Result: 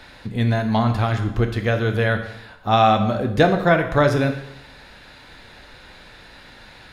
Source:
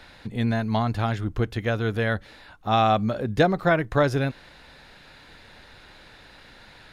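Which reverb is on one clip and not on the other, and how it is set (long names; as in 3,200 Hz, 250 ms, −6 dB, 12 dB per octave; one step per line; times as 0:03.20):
dense smooth reverb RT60 0.8 s, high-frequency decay 0.9×, DRR 5 dB
level +3.5 dB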